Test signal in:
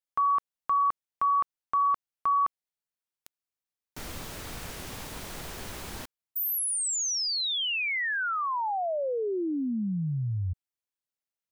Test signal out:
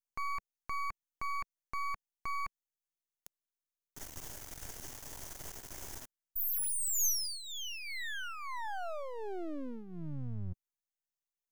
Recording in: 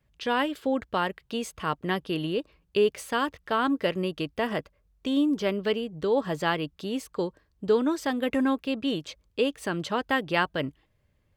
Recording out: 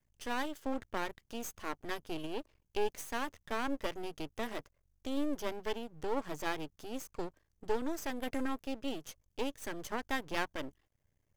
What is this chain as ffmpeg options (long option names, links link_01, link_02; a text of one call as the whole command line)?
ffmpeg -i in.wav -af "equalizer=frequency=200:width_type=o:width=0.33:gain=-11,equalizer=frequency=500:width_type=o:width=0.33:gain=-4,equalizer=frequency=1250:width_type=o:width=0.33:gain=-6,equalizer=frequency=2500:width_type=o:width=0.33:gain=-6,equalizer=frequency=4000:width_type=o:width=0.33:gain=-10,equalizer=frequency=6300:width_type=o:width=0.33:gain=8,aeval=exprs='max(val(0),0)':channel_layout=same,crystalizer=i=0.5:c=0,volume=-4.5dB" out.wav